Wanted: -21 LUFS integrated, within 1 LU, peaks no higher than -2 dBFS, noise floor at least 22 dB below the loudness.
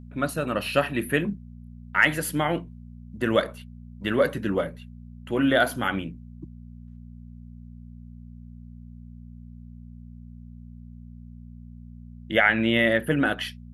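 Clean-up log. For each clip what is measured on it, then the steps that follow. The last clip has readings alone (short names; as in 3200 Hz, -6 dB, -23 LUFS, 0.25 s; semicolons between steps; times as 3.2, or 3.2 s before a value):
hum 60 Hz; harmonics up to 240 Hz; hum level -41 dBFS; loudness -24.5 LUFS; peak -6.0 dBFS; loudness target -21.0 LUFS
-> de-hum 60 Hz, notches 4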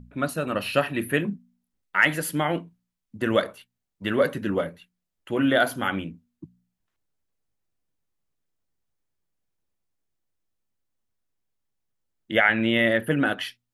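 hum none; loudness -24.5 LUFS; peak -6.0 dBFS; loudness target -21.0 LUFS
-> gain +3.5 dB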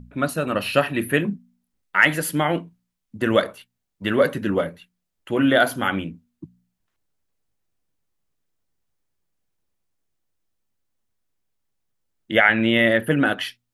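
loudness -21.0 LUFS; peak -2.5 dBFS; noise floor -78 dBFS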